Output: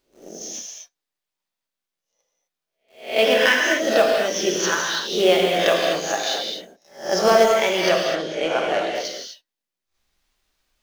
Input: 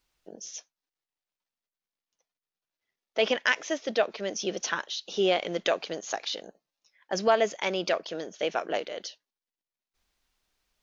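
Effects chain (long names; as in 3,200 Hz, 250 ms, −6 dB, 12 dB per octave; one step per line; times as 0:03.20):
peak hold with a rise ahead of every peak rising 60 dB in 0.42 s
in parallel at −5.5 dB: log-companded quantiser 4 bits
0:07.89–0:08.95: on the sum: high-frequency loss of the air 66 metres
reverb whose tail is shaped and stops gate 280 ms flat, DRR −1 dB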